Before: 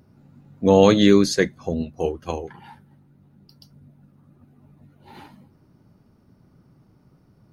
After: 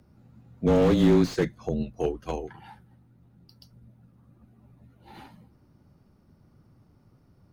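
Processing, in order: frequency shift -23 Hz; slew limiter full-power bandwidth 81 Hz; gain -3 dB

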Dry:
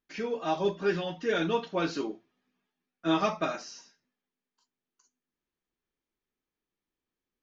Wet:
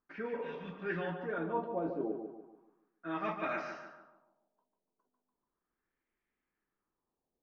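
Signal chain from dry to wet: notches 50/100/150 Hz; reverse; compressor 6:1, threshold -36 dBFS, peak gain reduction 14.5 dB; reverse; spectral repair 0.4–0.76, 240–1400 Hz both; on a send: darkening echo 0.145 s, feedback 42%, low-pass 4000 Hz, level -6.5 dB; on the sum: LFO low-pass sine 0.36 Hz 630–2100 Hz

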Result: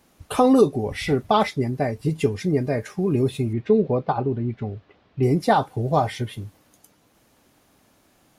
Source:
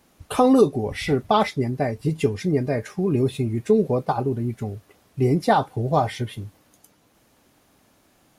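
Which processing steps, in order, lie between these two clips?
3.53–5.23 LPF 4000 Hz 24 dB/oct

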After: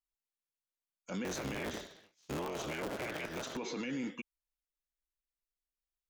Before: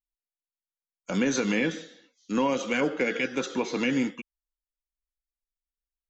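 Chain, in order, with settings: 1.24–3.57 cycle switcher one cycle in 3, inverted; limiter -27 dBFS, peak gain reduction 11 dB; gain -4 dB

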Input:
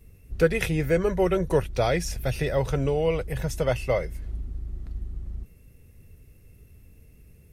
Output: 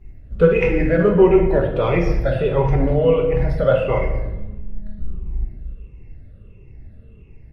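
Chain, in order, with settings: moving spectral ripple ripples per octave 0.72, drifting -1.5 Hz, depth 15 dB; bell 160 Hz -5.5 dB 0.32 oct; 4.36–4.99 robotiser 209 Hz; air absorption 410 m; doubler 29 ms -13 dB; reverb RT60 1.0 s, pre-delay 5 ms, DRR 0.5 dB; gain +3.5 dB; Opus 24 kbps 48000 Hz

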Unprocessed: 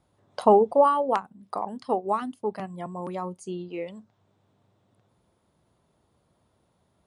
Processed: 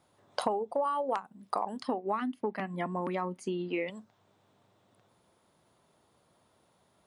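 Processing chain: 1.87–3.9 graphic EQ 250/2000/8000 Hz +11/+10/-10 dB; compressor 12:1, threshold -29 dBFS, peak gain reduction 17.5 dB; HPF 130 Hz 6 dB/oct; low shelf 480 Hz -6 dB; gain +4.5 dB

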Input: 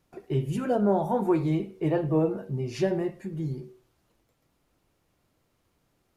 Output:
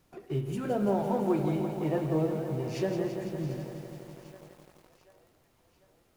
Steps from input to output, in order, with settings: G.711 law mismatch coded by mu; split-band echo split 520 Hz, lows 94 ms, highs 0.745 s, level -15 dB; lo-fi delay 0.168 s, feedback 80%, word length 8-bit, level -8 dB; gain -5.5 dB

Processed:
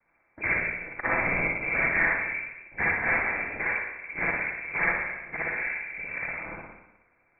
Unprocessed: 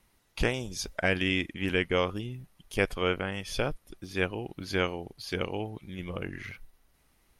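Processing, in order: noise vocoder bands 6; inverted band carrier 2500 Hz; spring tank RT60 1 s, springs 52/58 ms, chirp 75 ms, DRR -5 dB; gain -2 dB

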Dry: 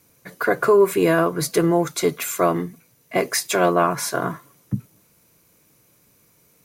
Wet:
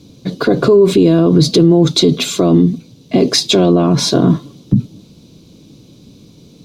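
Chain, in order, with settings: EQ curve 120 Hz 0 dB, 260 Hz +5 dB, 470 Hz -6 dB, 1900 Hz -23 dB, 3700 Hz +1 dB, 12000 Hz -29 dB; maximiser +22 dB; gain -1 dB

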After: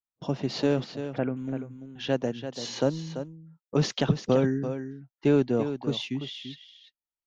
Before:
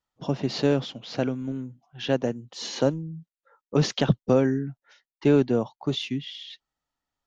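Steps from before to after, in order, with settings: 0.84–1.37 steep low-pass 2500 Hz 48 dB/oct; gate -46 dBFS, range -17 dB; echo 0.339 s -10 dB; gain -2.5 dB

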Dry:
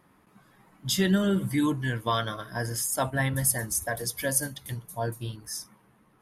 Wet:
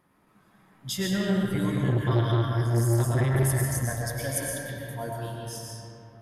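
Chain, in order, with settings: 1.54–3.63 resonant low shelf 150 Hz +8.5 dB, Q 3; reverb RT60 3.0 s, pre-delay 76 ms, DRR -3 dB; core saturation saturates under 390 Hz; gain -5 dB

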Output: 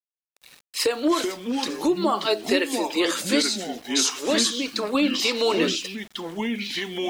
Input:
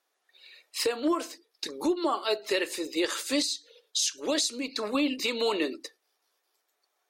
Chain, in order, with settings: echoes that change speed 0.158 s, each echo -4 st, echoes 2, each echo -6 dB; sample gate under -47.5 dBFS; gain +5 dB

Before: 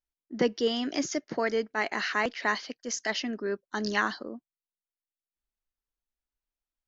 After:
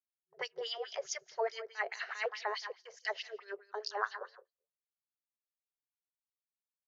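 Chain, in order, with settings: on a send: feedback echo 0.169 s, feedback 18%, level -12.5 dB; on the sum: gate -43 dBFS, range -20 dB; 3.91–4.34 resonant high shelf 1900 Hz -7 dB, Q 1.5; LFO band-pass sine 4.7 Hz 450–5800 Hz; FFT band-reject 170–370 Hz

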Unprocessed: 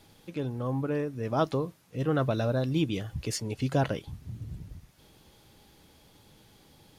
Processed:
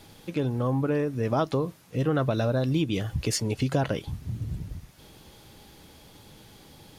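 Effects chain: compressor 4:1, threshold -29 dBFS, peak gain reduction 8 dB; gain +7 dB

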